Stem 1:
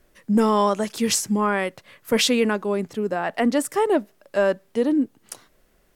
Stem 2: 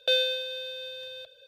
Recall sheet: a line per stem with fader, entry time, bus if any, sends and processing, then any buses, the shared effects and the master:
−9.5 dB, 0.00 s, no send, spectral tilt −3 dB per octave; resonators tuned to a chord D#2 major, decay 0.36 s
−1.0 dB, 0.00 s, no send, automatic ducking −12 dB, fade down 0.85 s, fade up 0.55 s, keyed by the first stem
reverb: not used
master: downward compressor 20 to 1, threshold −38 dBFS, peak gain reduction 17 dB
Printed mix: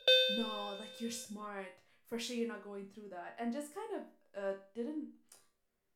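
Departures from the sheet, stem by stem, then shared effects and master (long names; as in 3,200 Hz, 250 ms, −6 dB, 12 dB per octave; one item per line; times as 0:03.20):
stem 1: missing spectral tilt −3 dB per octave
master: missing downward compressor 20 to 1, threshold −38 dBFS, peak gain reduction 17 dB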